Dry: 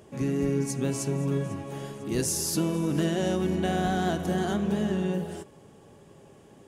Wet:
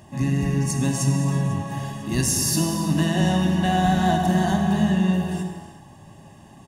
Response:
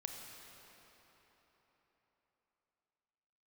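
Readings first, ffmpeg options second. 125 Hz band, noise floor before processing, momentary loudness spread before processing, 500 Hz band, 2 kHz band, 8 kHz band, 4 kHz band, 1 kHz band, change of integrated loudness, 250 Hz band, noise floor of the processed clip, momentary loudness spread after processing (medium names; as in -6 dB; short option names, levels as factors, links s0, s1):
+9.0 dB, -53 dBFS, 8 LU, 0.0 dB, +7.0 dB, +6.5 dB, +7.5 dB, +9.0 dB, +6.5 dB, +6.5 dB, -47 dBFS, 8 LU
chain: -filter_complex "[0:a]aecho=1:1:1.1:0.86[s0];[1:a]atrim=start_sample=2205,afade=t=out:st=0.44:d=0.01,atrim=end_sample=19845[s1];[s0][s1]afir=irnorm=-1:irlink=0,volume=2.24"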